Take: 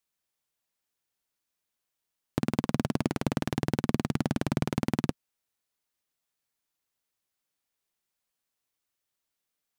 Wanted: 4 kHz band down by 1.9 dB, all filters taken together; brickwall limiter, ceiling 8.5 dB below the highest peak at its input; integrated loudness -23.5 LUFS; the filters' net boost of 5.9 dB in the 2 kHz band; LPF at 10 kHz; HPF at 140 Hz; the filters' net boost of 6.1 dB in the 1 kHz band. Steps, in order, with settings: high-pass 140 Hz; low-pass 10 kHz; peaking EQ 1 kHz +6.5 dB; peaking EQ 2 kHz +6.5 dB; peaking EQ 4 kHz -5.5 dB; trim +13 dB; peak limiter -4 dBFS

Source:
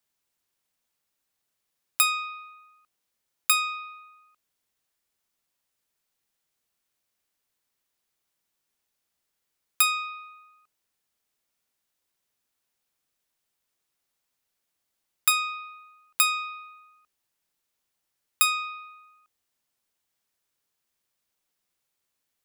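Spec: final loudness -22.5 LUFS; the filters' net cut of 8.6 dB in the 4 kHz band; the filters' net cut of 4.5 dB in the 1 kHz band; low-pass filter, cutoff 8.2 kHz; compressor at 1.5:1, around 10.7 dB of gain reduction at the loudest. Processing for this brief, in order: low-pass 8.2 kHz; peaking EQ 1 kHz -5.5 dB; peaking EQ 4 kHz -9 dB; compression 1.5:1, threshold -54 dBFS; trim +20 dB

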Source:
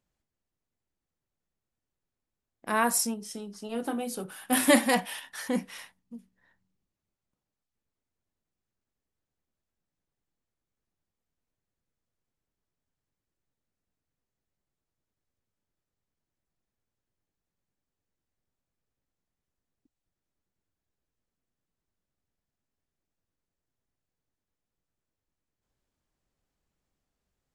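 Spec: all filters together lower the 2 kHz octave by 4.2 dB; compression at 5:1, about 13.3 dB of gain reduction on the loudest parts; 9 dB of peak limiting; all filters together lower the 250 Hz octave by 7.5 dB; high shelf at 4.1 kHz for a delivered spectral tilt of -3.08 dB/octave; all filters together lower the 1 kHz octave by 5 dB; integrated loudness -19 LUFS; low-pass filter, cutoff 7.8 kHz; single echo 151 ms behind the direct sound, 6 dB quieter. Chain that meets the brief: low-pass 7.8 kHz; peaking EQ 250 Hz -8 dB; peaking EQ 1 kHz -5.5 dB; peaking EQ 2 kHz -4.5 dB; treble shelf 4.1 kHz +6.5 dB; compression 5:1, threshold -34 dBFS; peak limiter -30.5 dBFS; delay 151 ms -6 dB; trim +22 dB

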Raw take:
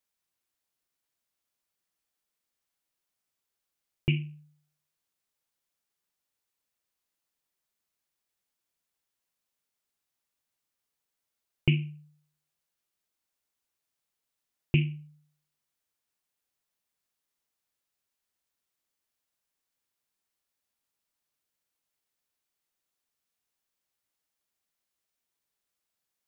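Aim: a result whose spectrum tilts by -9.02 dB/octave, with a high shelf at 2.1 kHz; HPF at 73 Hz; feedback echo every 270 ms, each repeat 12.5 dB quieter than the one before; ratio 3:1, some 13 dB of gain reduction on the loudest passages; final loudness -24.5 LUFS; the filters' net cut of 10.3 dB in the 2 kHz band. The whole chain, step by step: high-pass 73 Hz; peaking EQ 2 kHz -8 dB; treble shelf 2.1 kHz -8 dB; compression 3:1, threshold -38 dBFS; feedback delay 270 ms, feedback 24%, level -12.5 dB; trim +19 dB

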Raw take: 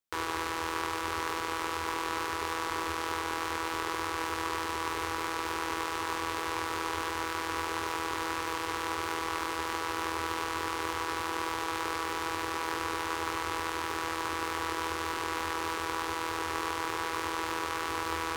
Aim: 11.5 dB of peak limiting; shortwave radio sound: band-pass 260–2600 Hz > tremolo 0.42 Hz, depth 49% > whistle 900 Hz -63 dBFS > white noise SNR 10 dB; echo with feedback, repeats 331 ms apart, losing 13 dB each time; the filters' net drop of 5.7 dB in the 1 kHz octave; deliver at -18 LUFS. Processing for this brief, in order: peaking EQ 1 kHz -6.5 dB; peak limiter -28 dBFS; band-pass 260–2600 Hz; feedback delay 331 ms, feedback 22%, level -13 dB; tremolo 0.42 Hz, depth 49%; whistle 900 Hz -63 dBFS; white noise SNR 10 dB; trim +29 dB

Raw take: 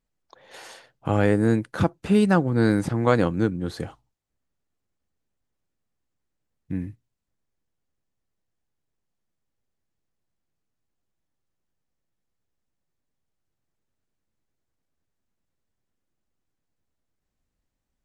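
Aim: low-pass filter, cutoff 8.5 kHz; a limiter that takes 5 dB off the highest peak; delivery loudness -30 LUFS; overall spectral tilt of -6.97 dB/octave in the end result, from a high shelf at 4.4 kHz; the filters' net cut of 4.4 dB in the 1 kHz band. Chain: low-pass 8.5 kHz; peaking EQ 1 kHz -5.5 dB; treble shelf 4.4 kHz -8.5 dB; trim -5.5 dB; peak limiter -17 dBFS

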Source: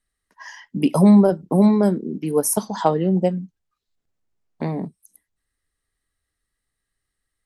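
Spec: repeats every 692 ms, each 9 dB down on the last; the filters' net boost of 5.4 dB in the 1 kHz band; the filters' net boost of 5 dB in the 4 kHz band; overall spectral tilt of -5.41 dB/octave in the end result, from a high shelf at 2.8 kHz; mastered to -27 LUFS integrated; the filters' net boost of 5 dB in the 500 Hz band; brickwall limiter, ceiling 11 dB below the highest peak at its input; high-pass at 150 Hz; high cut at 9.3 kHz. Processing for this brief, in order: high-pass 150 Hz; low-pass 9.3 kHz; peaking EQ 500 Hz +5 dB; peaking EQ 1 kHz +4.5 dB; treble shelf 2.8 kHz +3 dB; peaking EQ 4 kHz +4 dB; peak limiter -9 dBFS; feedback delay 692 ms, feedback 35%, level -9 dB; trim -6 dB

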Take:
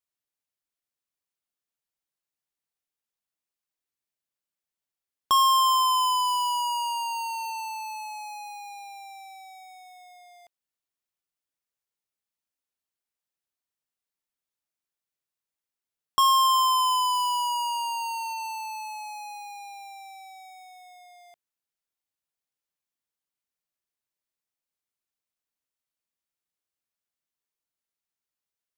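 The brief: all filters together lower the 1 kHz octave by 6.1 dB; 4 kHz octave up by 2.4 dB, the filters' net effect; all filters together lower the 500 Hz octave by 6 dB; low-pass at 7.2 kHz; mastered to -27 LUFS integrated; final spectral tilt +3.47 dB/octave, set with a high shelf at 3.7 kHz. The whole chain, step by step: low-pass 7.2 kHz; peaking EQ 500 Hz -6.5 dB; peaking EQ 1 kHz -5 dB; treble shelf 3.7 kHz -5 dB; peaking EQ 4 kHz +8 dB

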